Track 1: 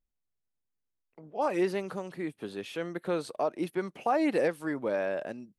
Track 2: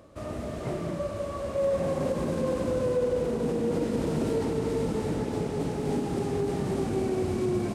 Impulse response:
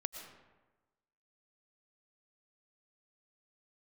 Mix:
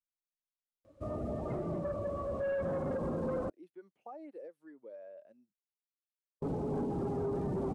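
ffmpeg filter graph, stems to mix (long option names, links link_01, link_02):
-filter_complex "[0:a]acrossover=split=380|1700|5800[link_01][link_02][link_03][link_04];[link_01]acompressor=threshold=-40dB:ratio=4[link_05];[link_02]acompressor=threshold=-29dB:ratio=4[link_06];[link_03]acompressor=threshold=-46dB:ratio=4[link_07];[link_04]acompressor=threshold=-59dB:ratio=4[link_08];[link_05][link_06][link_07][link_08]amix=inputs=4:normalize=0,volume=-15.5dB[link_09];[1:a]asoftclip=type=tanh:threshold=-29dB,adelay=850,volume=1dB,asplit=3[link_10][link_11][link_12];[link_10]atrim=end=3.5,asetpts=PTS-STARTPTS,afade=type=out:start_time=3.496:duration=0.004:curve=hsin[link_13];[link_11]atrim=start=3.5:end=6.42,asetpts=PTS-STARTPTS,volume=0[link_14];[link_12]atrim=start=6.42,asetpts=PTS-STARTPTS,afade=type=in:duration=0.004:curve=hsin[link_15];[link_13][link_14][link_15]concat=n=3:v=0:a=1[link_16];[link_09][link_16]amix=inputs=2:normalize=0,afftdn=noise_reduction=16:noise_floor=-40,alimiter=level_in=6dB:limit=-24dB:level=0:latency=1:release=251,volume=-6dB"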